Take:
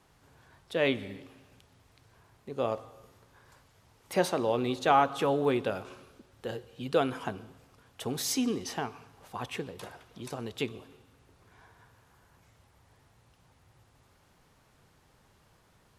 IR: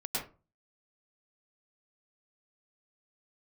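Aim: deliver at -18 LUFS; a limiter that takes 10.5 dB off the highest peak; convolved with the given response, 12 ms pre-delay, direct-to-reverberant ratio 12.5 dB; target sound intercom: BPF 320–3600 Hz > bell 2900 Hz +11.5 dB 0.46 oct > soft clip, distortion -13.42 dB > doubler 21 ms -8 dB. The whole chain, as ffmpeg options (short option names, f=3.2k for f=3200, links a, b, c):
-filter_complex "[0:a]alimiter=limit=-20dB:level=0:latency=1,asplit=2[a][b];[1:a]atrim=start_sample=2205,adelay=12[c];[b][c]afir=irnorm=-1:irlink=0,volume=-17dB[d];[a][d]amix=inputs=2:normalize=0,highpass=320,lowpass=3.6k,equalizer=f=2.9k:t=o:w=0.46:g=11.5,asoftclip=threshold=-27dB,asplit=2[e][f];[f]adelay=21,volume=-8dB[g];[e][g]amix=inputs=2:normalize=0,volume=19dB"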